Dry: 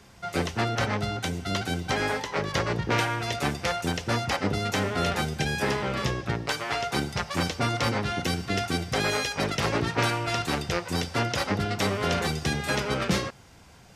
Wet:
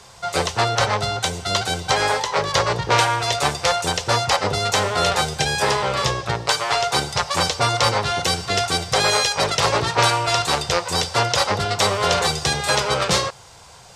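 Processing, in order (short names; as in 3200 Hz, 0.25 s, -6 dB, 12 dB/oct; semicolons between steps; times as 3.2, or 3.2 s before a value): graphic EQ 125/250/500/1000/4000/8000 Hz +4/-10/+7/+9/+8/+11 dB; gain +1.5 dB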